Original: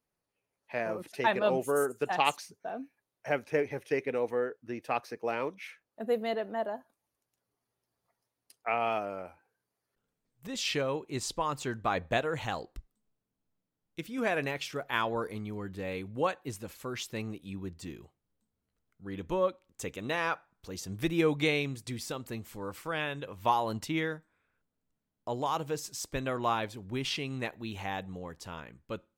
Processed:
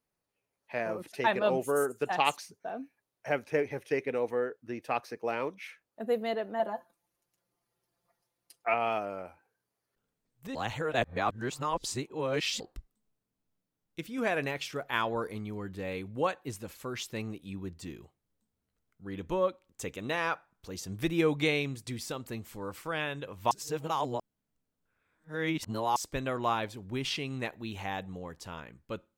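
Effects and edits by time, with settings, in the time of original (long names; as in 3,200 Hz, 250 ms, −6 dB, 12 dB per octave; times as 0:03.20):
0:06.59–0:08.74: comb filter 5.8 ms, depth 85%
0:10.55–0:12.60: reverse
0:23.51–0:25.96: reverse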